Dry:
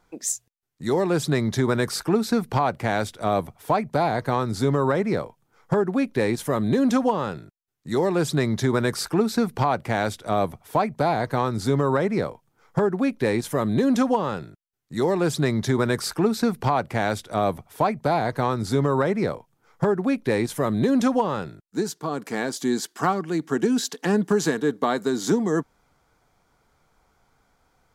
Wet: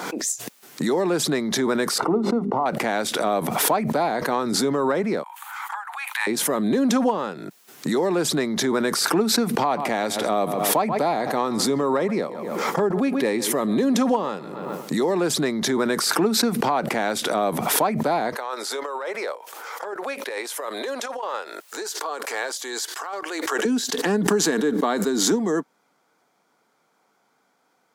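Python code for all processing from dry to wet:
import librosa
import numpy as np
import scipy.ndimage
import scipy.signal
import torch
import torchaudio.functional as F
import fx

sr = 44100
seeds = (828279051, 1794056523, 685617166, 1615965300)

y = fx.chain(x, sr, fx.cvsd(bps=64000),
    fx.savgol(points=65),
    fx.hum_notches(base_hz=50, count=8), at=(1.98, 2.66))
y = fx.chain(y, sr, fx.steep_highpass(hz=820.0, slope=72),
    fx.peak_eq(hz=5300.0, db=-11.5, octaves=0.61), at=(5.23, 6.27))
y = fx.chain(y, sr, fx.notch(hz=1500.0, q=11.0),
    fx.echo_filtered(ms=132, feedback_pct=29, hz=3700.0, wet_db=-19.5), at=(9.59, 15.13))
y = fx.chain(y, sr, fx.highpass(hz=510.0, slope=24),
    fx.peak_eq(hz=700.0, db=-4.0, octaves=0.24),
    fx.over_compress(threshold_db=-29.0, ratio=-0.5), at=(18.36, 23.65))
y = scipy.signal.sosfilt(scipy.signal.butter(4, 200.0, 'highpass', fs=sr, output='sos'), y)
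y = fx.pre_swell(y, sr, db_per_s=29.0)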